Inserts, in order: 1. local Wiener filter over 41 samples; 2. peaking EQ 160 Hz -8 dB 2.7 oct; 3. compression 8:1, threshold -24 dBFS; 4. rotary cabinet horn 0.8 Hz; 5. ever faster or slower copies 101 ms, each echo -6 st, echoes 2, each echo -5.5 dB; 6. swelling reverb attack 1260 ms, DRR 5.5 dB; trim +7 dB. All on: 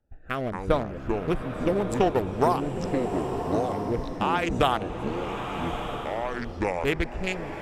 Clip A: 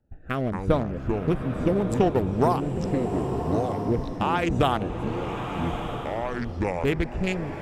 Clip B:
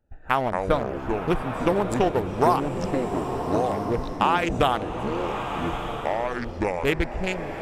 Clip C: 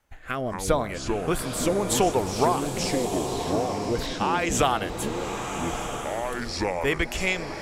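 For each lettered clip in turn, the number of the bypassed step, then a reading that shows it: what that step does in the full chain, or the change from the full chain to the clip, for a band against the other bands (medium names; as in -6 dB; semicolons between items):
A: 2, 125 Hz band +6.0 dB; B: 4, 1 kHz band +2.0 dB; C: 1, 8 kHz band +15.5 dB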